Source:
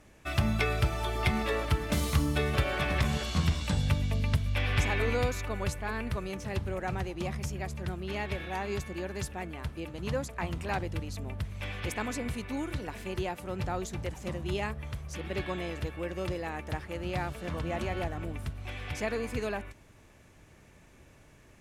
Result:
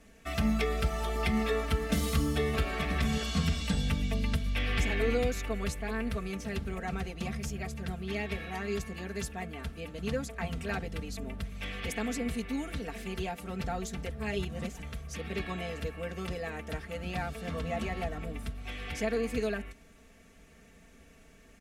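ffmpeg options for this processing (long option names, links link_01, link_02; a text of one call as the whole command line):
ffmpeg -i in.wav -filter_complex "[0:a]asplit=3[link_01][link_02][link_03];[link_01]atrim=end=14.112[link_04];[link_02]atrim=start=14.108:end=14.822,asetpts=PTS-STARTPTS,areverse[link_05];[link_03]atrim=start=14.818[link_06];[link_04][link_05]acrossfade=duration=0.004:curve1=hsin:curve2=hsin[link_07];[link_07][link_06]acrossfade=duration=0.004:curve1=hsin:curve2=hsin,equalizer=frequency=960:width_type=o:width=0.22:gain=-11.5,acrossover=split=450[link_08][link_09];[link_09]acompressor=threshold=-36dB:ratio=1.5[link_10];[link_08][link_10]amix=inputs=2:normalize=0,aecho=1:1:4.4:0.95,volume=-2dB" out.wav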